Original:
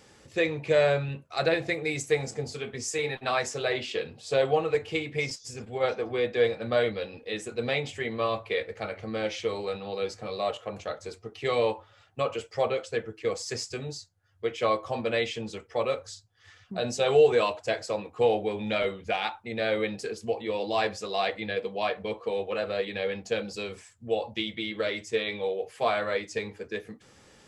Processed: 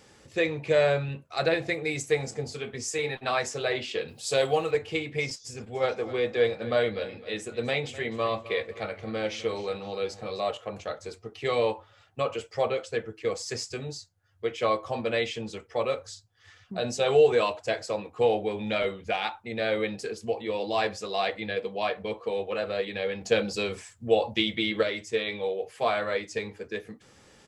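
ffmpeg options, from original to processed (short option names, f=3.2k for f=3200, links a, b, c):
-filter_complex "[0:a]asettb=1/sr,asplit=3[a][b][c];[a]atrim=end=4.084[d];[b]atrim=start=4.08:end=4.71,asetpts=PTS-STARTPTS,afade=t=in:d=0.004:c=qsin,afade=t=out:st=0.626:d=0.004:c=qsin,aemphasis=mode=production:type=75fm[e];[c]atrim=start=4.706[f];[d][e]acrossfade=d=0.004:c1=hsin:c2=qsin[g];[g][f]acrossfade=d=0.004:c1=qsin:c2=hsin,asplit=3[h][i][j];[h]afade=t=out:st=5.74:d=0.02[k];[i]aecho=1:1:256|512|768:0.158|0.0555|0.0194,afade=t=in:st=5.74:d=0.02,afade=t=out:st=10.4:d=0.02[l];[j]afade=t=in:st=10.4:d=0.02[m];[k][l][m]amix=inputs=3:normalize=0,asplit=3[n][o][p];[n]atrim=end=23.212[q];[o]atrim=start=23.208:end=24.832,asetpts=PTS-STARTPTS,volume=5.5dB[r];[p]atrim=start=24.828[s];[q][r]acrossfade=d=0.004:c1=hsin:c2=hsin[t];[t][s]acrossfade=d=0.004:c1=hsin:c2=hsin"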